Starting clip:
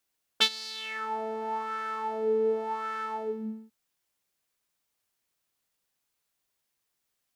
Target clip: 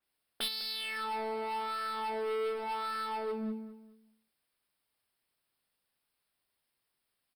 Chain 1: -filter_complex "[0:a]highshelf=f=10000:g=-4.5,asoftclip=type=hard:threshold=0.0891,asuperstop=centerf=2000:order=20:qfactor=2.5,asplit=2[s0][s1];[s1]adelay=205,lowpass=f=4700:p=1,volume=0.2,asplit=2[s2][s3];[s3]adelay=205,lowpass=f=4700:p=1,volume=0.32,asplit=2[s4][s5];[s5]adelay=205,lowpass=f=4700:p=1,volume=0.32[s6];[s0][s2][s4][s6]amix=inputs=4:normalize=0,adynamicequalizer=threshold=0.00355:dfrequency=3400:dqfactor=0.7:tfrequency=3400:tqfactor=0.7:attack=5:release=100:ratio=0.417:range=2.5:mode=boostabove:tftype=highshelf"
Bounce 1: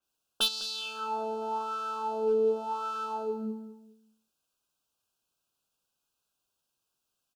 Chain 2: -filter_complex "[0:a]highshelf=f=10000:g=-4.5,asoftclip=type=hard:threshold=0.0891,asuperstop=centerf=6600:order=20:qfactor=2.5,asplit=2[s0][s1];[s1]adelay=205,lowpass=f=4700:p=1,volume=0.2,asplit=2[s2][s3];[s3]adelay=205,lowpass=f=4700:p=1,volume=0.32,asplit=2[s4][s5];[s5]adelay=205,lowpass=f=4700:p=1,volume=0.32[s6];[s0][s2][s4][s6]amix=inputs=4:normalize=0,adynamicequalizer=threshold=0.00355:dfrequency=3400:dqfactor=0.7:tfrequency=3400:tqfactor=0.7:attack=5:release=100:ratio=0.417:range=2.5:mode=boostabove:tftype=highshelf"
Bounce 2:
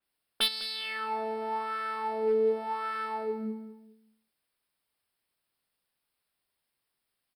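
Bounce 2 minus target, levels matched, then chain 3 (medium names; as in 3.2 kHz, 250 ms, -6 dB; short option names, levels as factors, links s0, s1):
hard clipper: distortion -8 dB
-filter_complex "[0:a]highshelf=f=10000:g=-4.5,asoftclip=type=hard:threshold=0.0224,asuperstop=centerf=6600:order=20:qfactor=2.5,asplit=2[s0][s1];[s1]adelay=205,lowpass=f=4700:p=1,volume=0.2,asplit=2[s2][s3];[s3]adelay=205,lowpass=f=4700:p=1,volume=0.32,asplit=2[s4][s5];[s5]adelay=205,lowpass=f=4700:p=1,volume=0.32[s6];[s0][s2][s4][s6]amix=inputs=4:normalize=0,adynamicequalizer=threshold=0.00355:dfrequency=3400:dqfactor=0.7:tfrequency=3400:tqfactor=0.7:attack=5:release=100:ratio=0.417:range=2.5:mode=boostabove:tftype=highshelf"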